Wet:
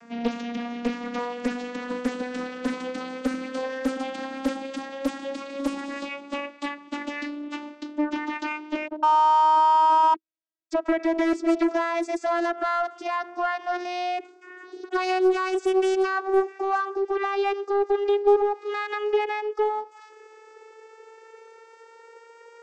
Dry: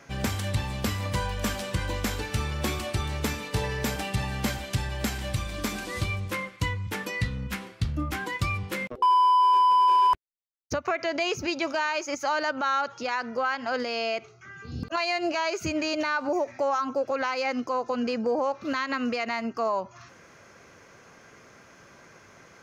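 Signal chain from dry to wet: vocoder on a gliding note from A#3, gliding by +12 st; in parallel at -4.5 dB: soft clip -30.5 dBFS, distortion -6 dB; on the sum: Doppler distortion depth 0.75 ms; gain +2 dB

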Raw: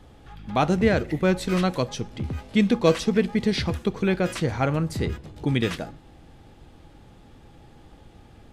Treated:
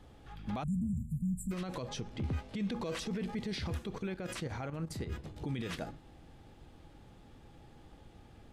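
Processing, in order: 0.63–1.52 spectral delete 240–7000 Hz; 1.73–2.72 high shelf 9800 Hz -9 dB; 3.98–5.12 level quantiser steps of 12 dB; limiter -28 dBFS, peak gain reduction 21 dB; upward expander 1.5:1, over -44 dBFS

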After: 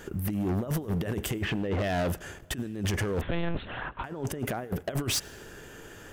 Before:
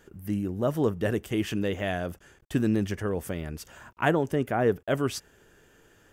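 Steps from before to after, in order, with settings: 1.34–1.84 LPF 1800 Hz 12 dB/oct; negative-ratio compressor -32 dBFS, ratio -0.5; hard clip -31.5 dBFS, distortion -8 dB; on a send at -22 dB: reverb RT60 1.7 s, pre-delay 80 ms; 3.21–4.04 on the sum: monotone LPC vocoder at 8 kHz 170 Hz; gain +6.5 dB

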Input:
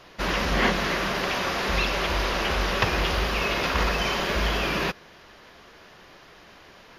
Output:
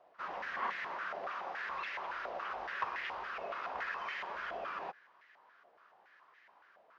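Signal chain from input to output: stepped band-pass 7.1 Hz 690–1900 Hz; gain -5.5 dB

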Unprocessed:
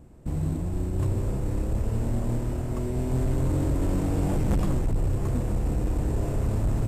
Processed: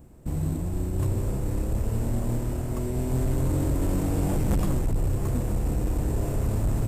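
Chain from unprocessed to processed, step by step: high shelf 10000 Hz +12 dB

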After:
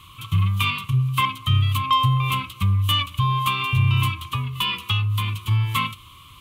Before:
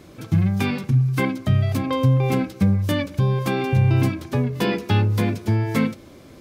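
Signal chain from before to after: EQ curve 110 Hz 0 dB, 220 Hz -18 dB, 750 Hz -27 dB, 1100 Hz +14 dB, 1600 Hz -14 dB, 3000 Hz +14 dB, 5200 Hz -9 dB, 7500 Hz 0 dB, 11000 Hz +5 dB; 4.21–5.51 compressor 2.5:1, threshold -23 dBFS, peak gain reduction 6.5 dB; added harmonics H 5 -31 dB, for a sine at -8 dBFS; gain +1 dB

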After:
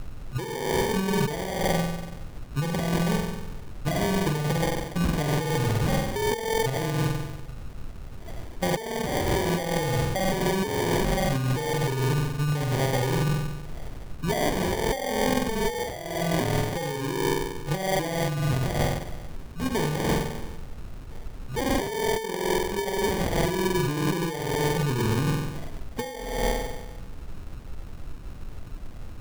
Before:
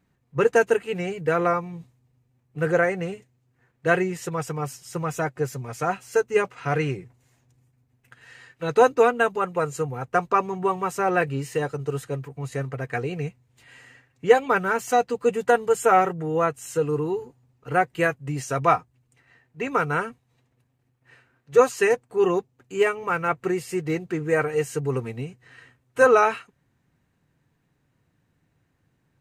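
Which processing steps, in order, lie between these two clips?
wow and flutter 150 cents; phaser stages 6, 0.96 Hz, lowest notch 440–4000 Hz; flutter echo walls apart 8.1 m, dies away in 1.1 s; added noise brown -43 dBFS; low shelf 210 Hz +4 dB; negative-ratio compressor -26 dBFS, ratio -1; sample-and-hold 33×

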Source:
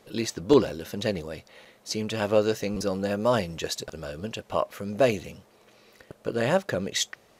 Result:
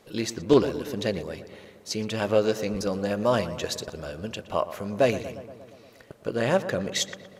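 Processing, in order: on a send: darkening echo 0.118 s, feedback 69%, low-pass 2300 Hz, level -13.5 dB; on the sum: Doppler distortion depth 0.1 ms

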